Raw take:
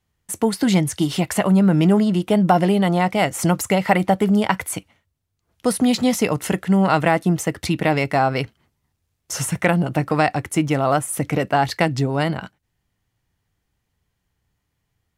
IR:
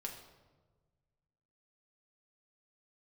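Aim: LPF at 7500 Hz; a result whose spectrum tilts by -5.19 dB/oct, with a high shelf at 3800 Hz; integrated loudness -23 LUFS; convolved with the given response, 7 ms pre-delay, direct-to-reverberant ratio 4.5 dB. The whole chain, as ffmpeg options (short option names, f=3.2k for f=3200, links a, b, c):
-filter_complex "[0:a]lowpass=7.5k,highshelf=f=3.8k:g=-5.5,asplit=2[a][b];[1:a]atrim=start_sample=2205,adelay=7[c];[b][c]afir=irnorm=-1:irlink=0,volume=-3dB[d];[a][d]amix=inputs=2:normalize=0,volume=-5dB"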